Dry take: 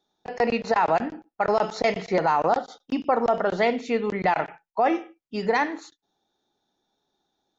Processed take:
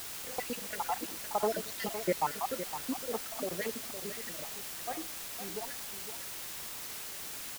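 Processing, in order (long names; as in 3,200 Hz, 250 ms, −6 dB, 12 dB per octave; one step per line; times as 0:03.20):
time-frequency cells dropped at random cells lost 58%
source passing by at 0:01.83, 17 m/s, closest 16 metres
on a send: single-tap delay 511 ms −10 dB
on the sum: bit-depth reduction 6 bits, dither triangular
level −6 dB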